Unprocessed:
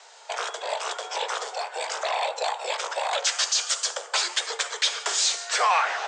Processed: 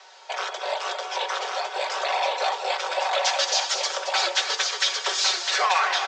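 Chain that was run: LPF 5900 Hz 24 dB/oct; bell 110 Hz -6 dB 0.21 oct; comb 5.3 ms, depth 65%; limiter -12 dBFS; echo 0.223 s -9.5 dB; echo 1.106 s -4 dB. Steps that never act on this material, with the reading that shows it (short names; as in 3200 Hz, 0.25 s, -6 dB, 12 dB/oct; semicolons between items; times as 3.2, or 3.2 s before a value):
bell 110 Hz: input band starts at 340 Hz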